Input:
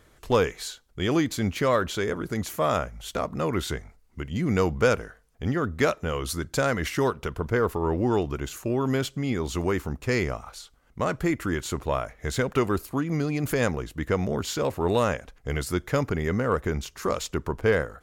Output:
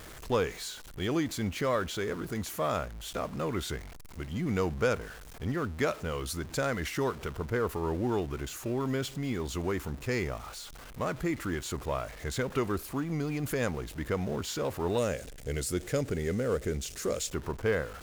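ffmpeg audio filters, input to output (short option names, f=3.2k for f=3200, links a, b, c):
-filter_complex "[0:a]aeval=exprs='val(0)+0.5*0.0188*sgn(val(0))':c=same,asettb=1/sr,asplit=3[a][b][c];[a]atrim=end=14.984[d];[b]atrim=start=14.98:end=17.3,asetpts=PTS-STARTPTS,afade=t=in:d=0.004:c=qsin,afade=t=out:st=2.316:d=0.004:c=qsin,equalizer=f=500:t=o:w=1:g=5,equalizer=f=1k:t=o:w=1:g=-10,equalizer=f=8k:t=o:w=1:g=7[e];[c]atrim=start=17.296[f];[d][e]acrossfade=d=0.004:c1=hsin:c2=qsin[g];[g][f]acrossfade=d=0.004:c1=qsin:c2=hsin,volume=-7dB"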